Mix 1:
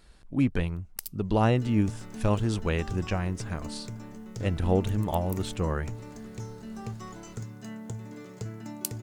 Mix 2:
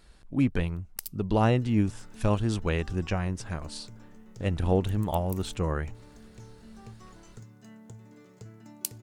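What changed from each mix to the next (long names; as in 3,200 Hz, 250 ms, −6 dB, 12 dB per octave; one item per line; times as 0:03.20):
second sound −9.5 dB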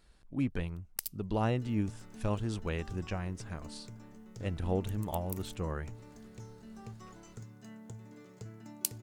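speech −7.5 dB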